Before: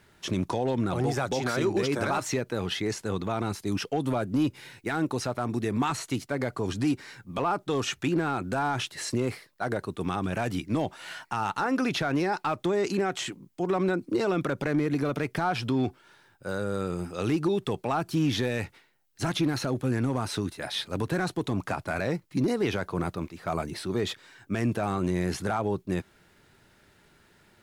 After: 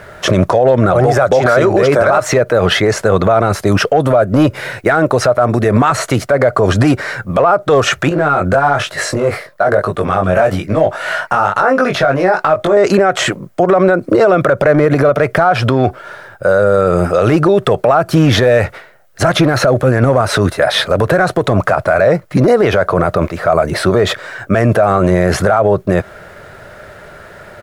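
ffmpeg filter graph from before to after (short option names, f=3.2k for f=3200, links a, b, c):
-filter_complex "[0:a]asettb=1/sr,asplit=3[a][b][c];[a]atrim=end=8.094[d];[b]atrim=start=8.09:end=12.77,asetpts=PTS-STARTPTS,afade=t=in:d=0.004:c=qsin,afade=t=out:st=4.676:d=0.004:c=qsin,acompressor=threshold=-30dB:ratio=4:attack=3.2:release=140:knee=1:detection=peak,flanger=delay=19:depth=3.2:speed=1.1[e];[c]atrim=start=12.766[f];[d][e]acrossfade=d=0.004:c1=hsin:c2=qsin[g];[g][f]acrossfade=d=0.004:c1=qsin:c2=hsin,firequalizer=gain_entry='entry(110,0);entry(280,-7);entry(600,13);entry(860,-1);entry(1300,6);entry(2600,-5);entry(3900,-7)':delay=0.05:min_phase=1,acompressor=threshold=-26dB:ratio=6,alimiter=level_in=24dB:limit=-1dB:release=50:level=0:latency=1,volume=-1dB"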